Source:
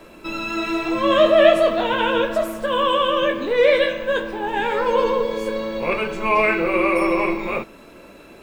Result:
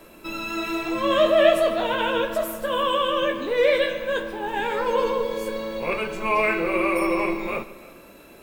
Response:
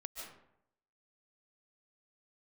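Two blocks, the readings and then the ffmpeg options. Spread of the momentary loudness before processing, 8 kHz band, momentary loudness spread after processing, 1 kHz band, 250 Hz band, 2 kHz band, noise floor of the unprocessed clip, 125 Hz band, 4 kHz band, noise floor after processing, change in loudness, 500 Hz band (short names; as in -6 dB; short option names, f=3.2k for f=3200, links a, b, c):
11 LU, n/a, 10 LU, -3.5 dB, -4.0 dB, -3.5 dB, -44 dBFS, -4.0 dB, -3.0 dB, -47 dBFS, -3.5 dB, -4.0 dB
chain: -filter_complex "[0:a]equalizer=f=14k:t=o:w=0.88:g=13.5,asplit=2[a][b];[1:a]atrim=start_sample=2205,adelay=147[c];[b][c]afir=irnorm=-1:irlink=0,volume=-13.5dB[d];[a][d]amix=inputs=2:normalize=0,volume=-4dB"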